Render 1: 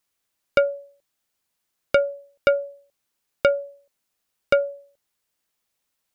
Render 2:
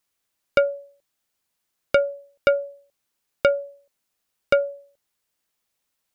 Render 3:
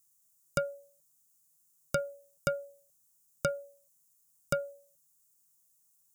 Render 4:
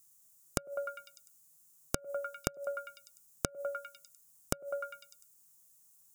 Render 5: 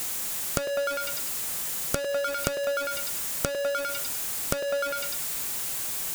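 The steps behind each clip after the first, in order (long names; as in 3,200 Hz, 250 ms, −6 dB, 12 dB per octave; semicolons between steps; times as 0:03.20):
no processing that can be heard
drawn EQ curve 100 Hz 0 dB, 150 Hz +12 dB, 220 Hz −1 dB, 470 Hz −12 dB, 920 Hz −4 dB, 1,300 Hz −4 dB, 2,200 Hz −15 dB, 4,400 Hz −4 dB, 6,900 Hz +14 dB; level −4 dB
echo through a band-pass that steps 100 ms, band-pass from 500 Hz, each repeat 0.7 octaves, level −6 dB; gate with flip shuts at −17 dBFS, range −28 dB; level +5.5 dB
converter with a step at zero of −29 dBFS; level +3.5 dB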